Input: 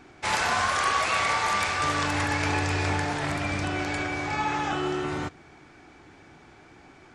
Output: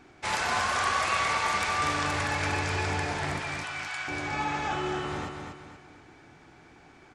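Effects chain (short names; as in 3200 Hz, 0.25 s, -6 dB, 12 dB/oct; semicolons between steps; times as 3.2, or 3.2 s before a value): 3.4–4.08 HPF 920 Hz 24 dB/oct; feedback echo 0.24 s, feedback 40%, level -5.5 dB; gain -3.5 dB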